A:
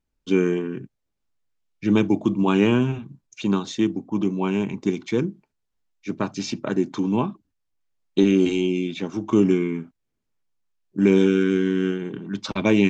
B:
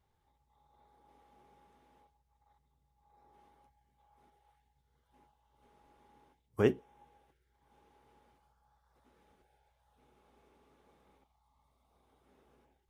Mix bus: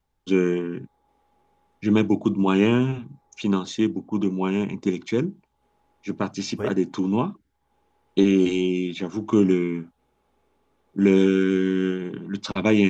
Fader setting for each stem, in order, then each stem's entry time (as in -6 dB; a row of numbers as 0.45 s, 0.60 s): -0.5 dB, -1.0 dB; 0.00 s, 0.00 s